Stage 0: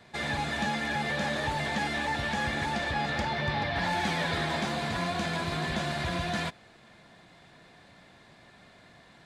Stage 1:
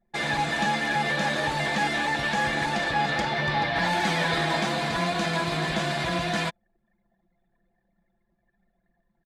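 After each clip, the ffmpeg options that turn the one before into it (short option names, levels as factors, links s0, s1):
-af "anlmdn=0.1,equalizer=f=81:w=0.87:g=-8.5,aecho=1:1:6.1:0.4,volume=1.68"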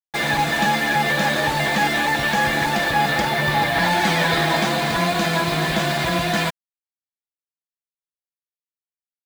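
-af "acrusher=bits=5:mix=0:aa=0.5,volume=2"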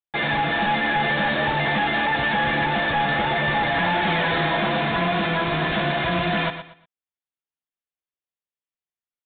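-filter_complex "[0:a]asoftclip=type=hard:threshold=0.119,asplit=2[s0][s1];[s1]aecho=0:1:118|236|354:0.299|0.0806|0.0218[s2];[s0][s2]amix=inputs=2:normalize=0,aresample=8000,aresample=44100"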